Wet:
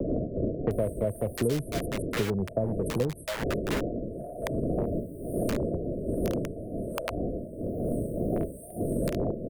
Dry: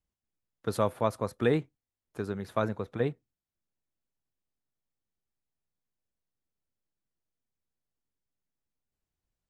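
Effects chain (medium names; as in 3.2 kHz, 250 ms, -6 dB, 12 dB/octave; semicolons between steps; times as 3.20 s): wind noise 520 Hz -42 dBFS; FFT band-reject 710–8400 Hz; dynamic bell 1.1 kHz, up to +5 dB, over -46 dBFS, Q 0.78; in parallel at -5 dB: integer overflow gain 28 dB; on the sum: bands offset in time lows, highs 710 ms, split 860 Hz; wow and flutter 70 cents; three bands compressed up and down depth 100%; trim +4.5 dB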